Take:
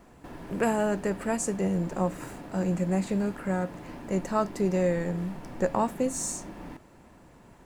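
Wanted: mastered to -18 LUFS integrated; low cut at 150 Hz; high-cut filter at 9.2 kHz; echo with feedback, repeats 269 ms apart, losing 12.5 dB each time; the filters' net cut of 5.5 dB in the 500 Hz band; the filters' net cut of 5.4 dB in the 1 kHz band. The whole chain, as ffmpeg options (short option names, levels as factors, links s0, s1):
-af "highpass=150,lowpass=9200,equalizer=f=500:t=o:g=-5.5,equalizer=f=1000:t=o:g=-5,aecho=1:1:269|538|807:0.237|0.0569|0.0137,volume=5.31"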